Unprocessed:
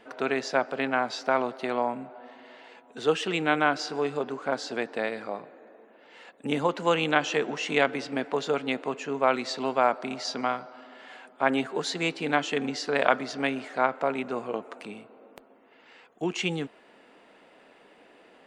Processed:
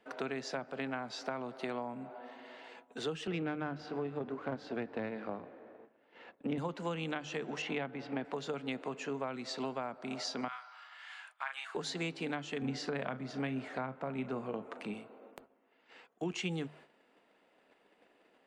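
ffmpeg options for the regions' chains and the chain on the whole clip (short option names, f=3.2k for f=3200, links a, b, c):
-filter_complex "[0:a]asettb=1/sr,asplit=3[a][b][c];[a]atrim=end=3.274[d];[b]atrim=start=3.27:end=6.58,asetpts=PTS-STARTPTS,afade=t=in:d=0.004:c=qsin,afade=t=out:st=3.306:d=0.004:c=qsin,aeval=exprs='if(lt(val(0),0),0.447*val(0),val(0))':c=same,highpass=200,lowpass=3.1k,lowshelf=f=270:g=11[e];[c]atrim=start=6.576[f];[d][e]acrossfade=d=0.004:c1=hsin:c2=qsin[g];[g][f]acrossfade=d=0.004:c1=qsin:c2=hsin,asettb=1/sr,asplit=3[h][i][j];[h]atrim=end=7.624[k];[i]atrim=start=7.62:end=8.25,asetpts=PTS-STARTPTS,afade=t=in:d=0.004:c=qsin,afade=t=out:st=0.626:d=0.004:c=qsin,lowpass=3.4k,equalizer=f=810:t=o:w=0.44:g=5.5[l];[j]atrim=start=8.246[m];[k][l]acrossfade=d=0.004:c1=hsin:c2=qsin[n];[n][m]acrossfade=d=0.004:c1=qsin:c2=hsin,asettb=1/sr,asplit=3[o][p][q];[o]atrim=end=10.484[r];[p]atrim=start=10.48:end=11.75,asetpts=PTS-STARTPTS,afade=t=in:d=0.004:c=qsin,afade=t=out:st=1.266:d=0.004:c=qsin,highpass=f=1.1k:w=0.5412,highpass=f=1.1k:w=1.3066,asplit=2[s][t];[t]adelay=36,volume=-4dB[u];[s][u]amix=inputs=2:normalize=0,atrim=end_sample=56007[v];[q]atrim=start=11.746[w];[r][v]acrossfade=d=0.004:c1=hsin:c2=qsin[x];[x][w]acrossfade=d=0.004:c1=qsin:c2=hsin,asettb=1/sr,asplit=3[y][z][aa];[y]atrim=end=12.624[ab];[z]atrim=start=12.62:end=14.94,asetpts=PTS-STARTPTS,afade=t=in:d=0.004:c=qsin,afade=t=out:st=2.316:d=0.004:c=qsin,bass=f=250:g=6,treble=f=4k:g=-6,asplit=2[ac][ad];[ad]adelay=38,volume=-14dB[ae];[ac][ae]amix=inputs=2:normalize=0,atrim=end_sample=102312[af];[aa]atrim=start=14.936[ag];[ab][af]acrossfade=d=0.004:c1=hsin:c2=qsin[ah];[ah][ag]acrossfade=d=0.004:c1=qsin:c2=hsin,agate=range=-11dB:threshold=-53dB:ratio=16:detection=peak,bandreject=f=50:t=h:w=6,bandreject=f=100:t=h:w=6,bandreject=f=150:t=h:w=6,acrossover=split=200[ai][aj];[aj]acompressor=threshold=-33dB:ratio=10[ak];[ai][ak]amix=inputs=2:normalize=0,volume=-2.5dB"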